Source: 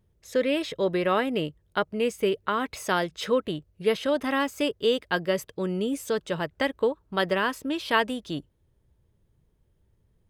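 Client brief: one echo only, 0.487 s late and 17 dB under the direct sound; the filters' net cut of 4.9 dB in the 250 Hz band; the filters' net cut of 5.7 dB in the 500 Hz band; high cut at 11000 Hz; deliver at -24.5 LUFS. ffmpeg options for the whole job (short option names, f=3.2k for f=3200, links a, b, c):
-af "lowpass=11k,equalizer=f=250:t=o:g=-4.5,equalizer=f=500:t=o:g=-5.5,aecho=1:1:487:0.141,volume=6dB"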